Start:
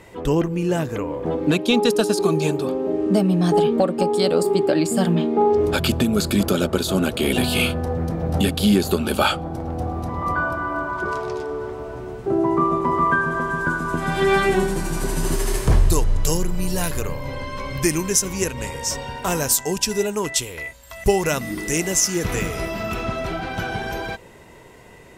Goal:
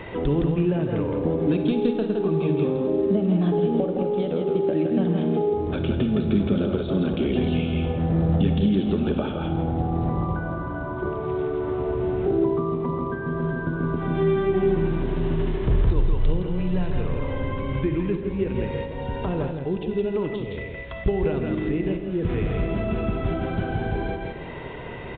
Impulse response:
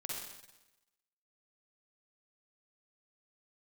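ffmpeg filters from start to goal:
-filter_complex "[0:a]acompressor=threshold=0.0251:ratio=3,aecho=1:1:165|330|495:0.562|0.09|0.0144,acrossover=split=500[s0][s1];[s1]acompressor=threshold=0.00562:ratio=8[s2];[s0][s2]amix=inputs=2:normalize=0,asplit=2[s3][s4];[1:a]atrim=start_sample=2205[s5];[s4][s5]afir=irnorm=-1:irlink=0,volume=0.668[s6];[s3][s6]amix=inputs=2:normalize=0,volume=2.11" -ar 8000 -c:a pcm_alaw

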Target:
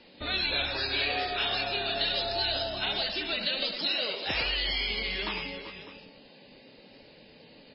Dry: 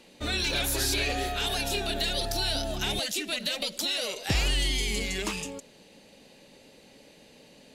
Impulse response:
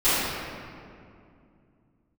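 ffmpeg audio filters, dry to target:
-filter_complex "[0:a]acrossover=split=460|3000[s0][s1][s2];[s0]acompressor=threshold=0.00891:ratio=5[s3];[s3][s1][s2]amix=inputs=3:normalize=0,asplit=2[s4][s5];[s5]aecho=0:1:67|104|383|395|601:0.2|0.376|0.178|0.237|0.168[s6];[s4][s6]amix=inputs=2:normalize=0" -ar 12000 -c:a libmp3lame -b:a 16k

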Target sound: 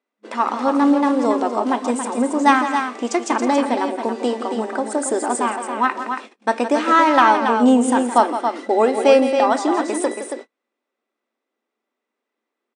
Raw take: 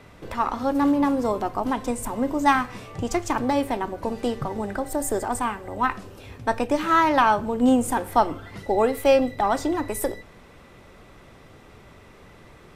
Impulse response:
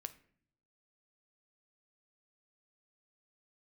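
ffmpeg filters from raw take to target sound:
-af "aecho=1:1:166.2|277:0.282|0.447,agate=range=0.0158:threshold=0.0158:ratio=16:detection=peak,afftfilt=real='re*between(b*sr/4096,210,9800)':imag='im*between(b*sr/4096,210,9800)':win_size=4096:overlap=0.75,volume=1.68"

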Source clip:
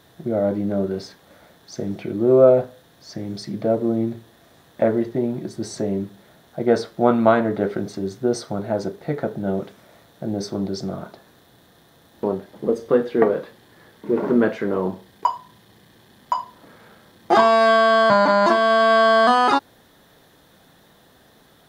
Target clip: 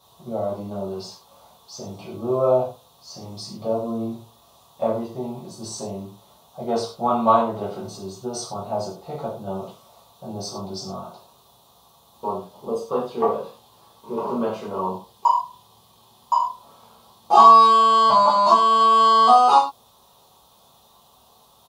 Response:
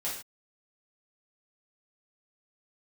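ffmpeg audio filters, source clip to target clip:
-filter_complex "[0:a]firequalizer=gain_entry='entry(160,0);entry(290,-7);entry(460,0);entry(1100,10);entry(1700,-17);entry(2700,3);entry(5300,7)':delay=0.05:min_phase=1[s0];[1:a]atrim=start_sample=2205,asetrate=57330,aresample=44100[s1];[s0][s1]afir=irnorm=-1:irlink=0,volume=0.531"

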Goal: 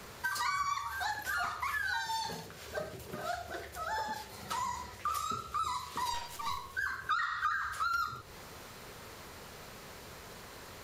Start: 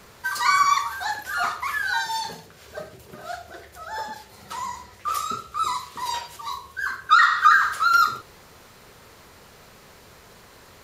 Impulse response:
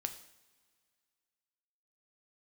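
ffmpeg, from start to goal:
-filter_complex "[0:a]asettb=1/sr,asplit=3[s0][s1][s2];[s0]atrim=end=6.134[s3];[s1]atrim=start=6.13:end=6.73,asetpts=PTS-STARTPTS,afade=t=in:d=0.004:c=qsin,afade=t=out:st=0.596:d=0.004:c=qsin,aeval=exprs='if(lt(val(0),0),0.447*val(0),val(0))':c=same[s4];[s2]atrim=start=6.726[s5];[s3][s4]acrossfade=d=0.004:c1=hsin:c2=qsin[s6];[s6][s5]acrossfade=d=0.004:c1=qsin:c2=hsin,acrossover=split=130[s7][s8];[s8]acompressor=threshold=0.0224:ratio=5[s9];[s7][s9]amix=inputs=2:normalize=0"

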